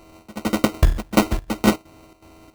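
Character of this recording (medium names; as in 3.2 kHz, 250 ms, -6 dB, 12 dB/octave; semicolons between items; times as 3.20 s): a buzz of ramps at a fixed pitch in blocks of 32 samples; chopped level 2.7 Hz, depth 65%, duty 75%; aliases and images of a low sample rate 1.7 kHz, jitter 0%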